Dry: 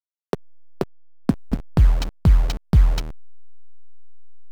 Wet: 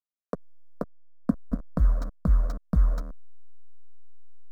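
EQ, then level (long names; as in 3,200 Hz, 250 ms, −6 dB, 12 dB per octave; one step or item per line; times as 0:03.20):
high shelf with overshoot 1,600 Hz −10 dB, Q 1.5
phaser with its sweep stopped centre 560 Hz, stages 8
−4.0 dB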